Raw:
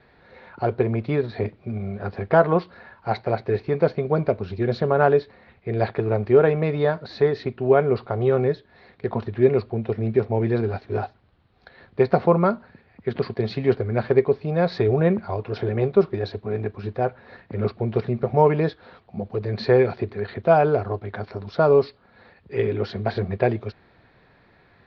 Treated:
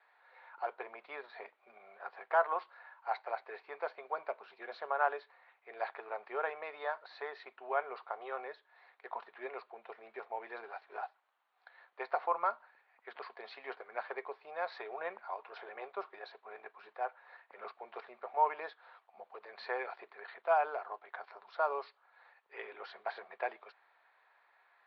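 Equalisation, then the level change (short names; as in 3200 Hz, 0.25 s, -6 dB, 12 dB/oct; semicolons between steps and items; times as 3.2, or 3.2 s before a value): ladder high-pass 720 Hz, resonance 35%; LPF 3300 Hz 12 dB/oct; -3.0 dB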